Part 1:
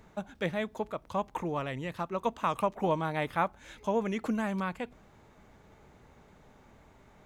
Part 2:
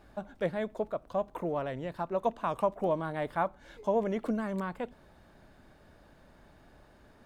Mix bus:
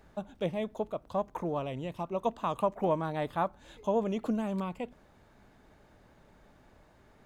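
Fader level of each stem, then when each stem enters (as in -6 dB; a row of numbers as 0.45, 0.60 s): -6.0, -4.5 dB; 0.00, 0.00 s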